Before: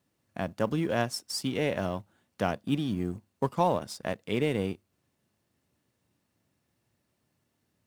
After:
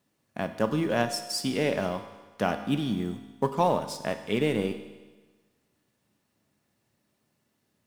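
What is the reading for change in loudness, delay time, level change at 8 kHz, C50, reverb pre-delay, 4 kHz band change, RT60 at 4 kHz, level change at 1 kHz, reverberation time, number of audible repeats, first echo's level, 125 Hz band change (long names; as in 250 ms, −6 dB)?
+2.0 dB, no echo audible, +2.5 dB, 10.0 dB, 4 ms, +3.0 dB, 1.3 s, +2.5 dB, 1.3 s, no echo audible, no echo audible, 0.0 dB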